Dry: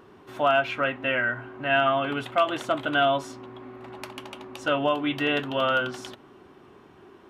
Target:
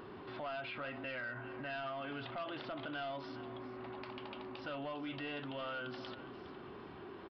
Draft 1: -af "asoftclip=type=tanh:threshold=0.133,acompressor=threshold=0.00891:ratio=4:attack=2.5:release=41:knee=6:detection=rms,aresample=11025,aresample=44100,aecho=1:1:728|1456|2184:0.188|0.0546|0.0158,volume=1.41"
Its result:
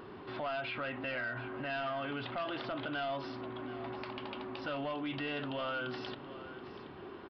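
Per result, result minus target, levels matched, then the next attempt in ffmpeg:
echo 316 ms late; compression: peak gain reduction -5 dB
-af "asoftclip=type=tanh:threshold=0.133,acompressor=threshold=0.00891:ratio=4:attack=2.5:release=41:knee=6:detection=rms,aresample=11025,aresample=44100,aecho=1:1:412|824|1236:0.188|0.0546|0.0158,volume=1.41"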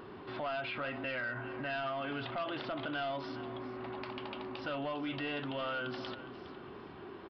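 compression: peak gain reduction -5 dB
-af "asoftclip=type=tanh:threshold=0.133,acompressor=threshold=0.00422:ratio=4:attack=2.5:release=41:knee=6:detection=rms,aresample=11025,aresample=44100,aecho=1:1:412|824|1236:0.188|0.0546|0.0158,volume=1.41"

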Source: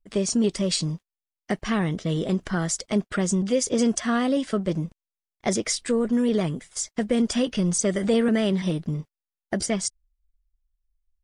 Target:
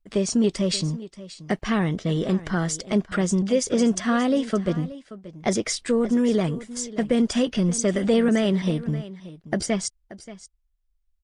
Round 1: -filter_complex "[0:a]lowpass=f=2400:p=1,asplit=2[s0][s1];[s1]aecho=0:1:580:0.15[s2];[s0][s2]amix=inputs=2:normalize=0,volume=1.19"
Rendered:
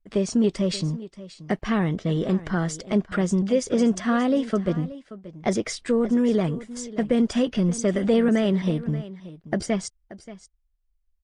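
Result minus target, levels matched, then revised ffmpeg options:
8 kHz band -5.5 dB
-filter_complex "[0:a]lowpass=f=6100:p=1,asplit=2[s0][s1];[s1]aecho=0:1:580:0.15[s2];[s0][s2]amix=inputs=2:normalize=0,volume=1.19"

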